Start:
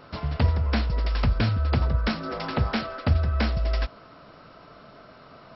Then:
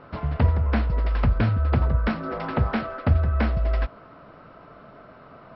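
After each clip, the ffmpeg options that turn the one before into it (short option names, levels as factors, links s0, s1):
-af "lowpass=2100,volume=1.26"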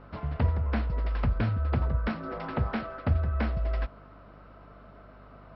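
-af "aeval=exprs='val(0)+0.00501*(sin(2*PI*50*n/s)+sin(2*PI*2*50*n/s)/2+sin(2*PI*3*50*n/s)/3+sin(2*PI*4*50*n/s)/4+sin(2*PI*5*50*n/s)/5)':c=same,volume=0.501"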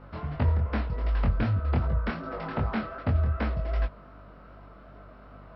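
-af "flanger=delay=19.5:depth=5.7:speed=2.6,volume=1.58"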